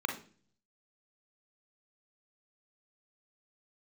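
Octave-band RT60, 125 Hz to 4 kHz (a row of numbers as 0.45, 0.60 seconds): 0.85, 0.70, 0.50, 0.35, 0.40, 0.45 seconds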